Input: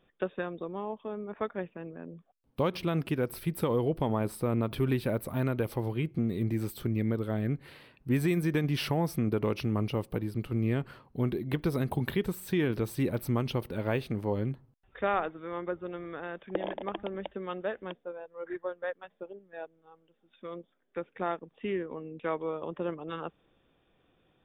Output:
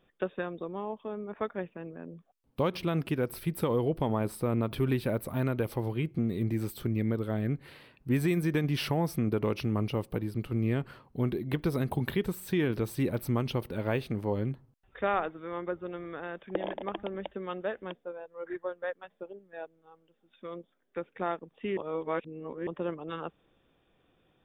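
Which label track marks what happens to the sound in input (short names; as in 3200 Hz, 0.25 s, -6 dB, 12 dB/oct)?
21.770000	22.670000	reverse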